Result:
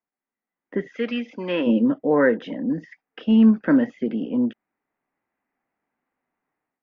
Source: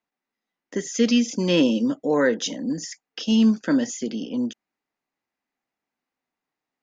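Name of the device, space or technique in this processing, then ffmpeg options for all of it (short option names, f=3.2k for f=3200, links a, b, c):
action camera in a waterproof case: -filter_complex "[0:a]asplit=3[a][b][c];[a]afade=t=out:st=0.96:d=0.02[d];[b]highpass=f=1.1k:p=1,afade=t=in:st=0.96:d=0.02,afade=t=out:st=1.66:d=0.02[e];[c]afade=t=in:st=1.66:d=0.02[f];[d][e][f]amix=inputs=3:normalize=0,lowpass=f=2.2k:w=0.5412,lowpass=f=2.2k:w=1.3066,dynaudnorm=f=510:g=3:m=12dB,volume=-5.5dB" -ar 16000 -c:a aac -b:a 48k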